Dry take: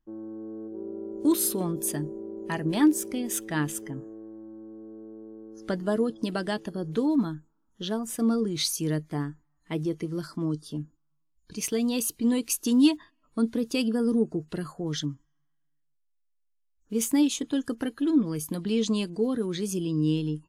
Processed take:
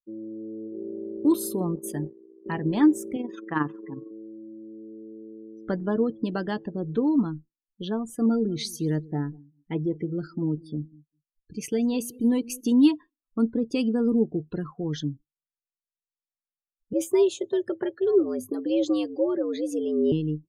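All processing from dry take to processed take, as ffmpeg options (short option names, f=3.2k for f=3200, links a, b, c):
-filter_complex "[0:a]asettb=1/sr,asplit=3[a][b][c];[a]atrim=end=1.754[d];[b]atrim=start=1.75:end=2.46,asetpts=PTS-STARTPTS,afade=t=in:d=0.004:c=qsin,afade=t=out:st=0.706:d=0.004:c=qsin,agate=range=-33dB:threshold=-32dB:ratio=3:release=100:detection=peak,equalizer=f=2.6k:w=1.5:g=2.5,aeval=exprs='sgn(val(0))*max(abs(val(0))-0.00398,0)':c=same[e];[c]atrim=start=2.456[f];[d][e]acrossfade=d=0.004:c1=hsin:c2=qsin[g];[g][f]acrossfade=d=0.004:c1=qsin:c2=hsin,asettb=1/sr,asplit=3[h][i][j];[h]atrim=end=3.164[k];[i]atrim=start=3.16:end=4.11,asetpts=PTS-STARTPTS,afade=t=in:d=0.004:c=qsin,afade=t=out:st=0.946:d=0.004:c=qsin,acontrast=24,tremolo=f=22:d=0.519,highpass=220,equalizer=f=220:t=q:w=4:g=-6,equalizer=f=390:t=q:w=4:g=-5,equalizer=f=620:t=q:w=4:g=-7,equalizer=f=1.1k:t=q:w=4:g=8,equalizer=f=2k:t=q:w=4:g=-4,equalizer=f=3.1k:t=q:w=4:g=-6,lowpass=f=4k:w=0.5412,lowpass=f=4k:w=1.3066[l];[j]atrim=start=4.106[m];[k][l]acrossfade=d=0.004:c1=hsin:c2=qsin[n];[n][m]acrossfade=d=0.004:c1=qsin:c2=hsin,asettb=1/sr,asplit=3[o][p][q];[o]atrim=end=8.264[r];[p]atrim=start=8.26:end=12.72,asetpts=PTS-STARTPTS,afade=t=in:d=0.004:c=qsin,afade=t=out:st=4.456:d=0.004:c=qsin,asuperstop=centerf=1100:order=20:qfactor=6,aecho=1:1:196|392:0.0891|0.0294,atrim=end_sample=196686[s];[q]atrim=start=12.716[t];[r][s]acrossfade=d=0.004:c1=hsin:c2=qsin[u];[u][t]acrossfade=d=0.004:c1=qsin:c2=hsin,asettb=1/sr,asplit=3[v][w][x];[v]atrim=end=16.934[y];[w]atrim=start=16.93:end=20.12,asetpts=PTS-STARTPTS,afade=t=in:d=0.004:c=qsin,afade=t=out:st=3.186:d=0.004:c=qsin,afreqshift=100,lowshelf=f=66:g=7.5[z];[x]atrim=start=20.116[aa];[y][z]acrossfade=d=0.004:c1=hsin:c2=qsin[ab];[ab][aa]acrossfade=d=0.004:c1=qsin:c2=hsin,bandreject=f=640:w=12,afftdn=nr=36:nf=-42,highshelf=f=2.6k:g=-10,volume=2dB"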